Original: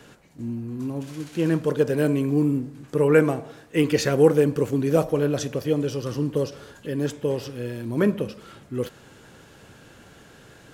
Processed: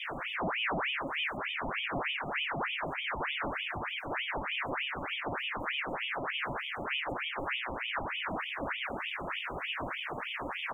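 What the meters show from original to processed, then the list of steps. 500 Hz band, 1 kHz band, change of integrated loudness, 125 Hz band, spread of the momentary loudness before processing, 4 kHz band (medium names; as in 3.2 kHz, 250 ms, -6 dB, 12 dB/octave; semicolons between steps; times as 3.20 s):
-18.0 dB, +1.5 dB, -10.5 dB, -20.0 dB, 14 LU, +4.0 dB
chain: one-bit comparator; high-pass 140 Hz; bass shelf 210 Hz +11 dB; flange 0.9 Hz, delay 5.8 ms, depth 3.4 ms, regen +48%; brick-wall FIR band-stop 880–6900 Hz; distance through air 330 m; delay 986 ms -8 dB; ring modulator with a swept carrier 1.6 kHz, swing 75%, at 3.3 Hz; trim -7 dB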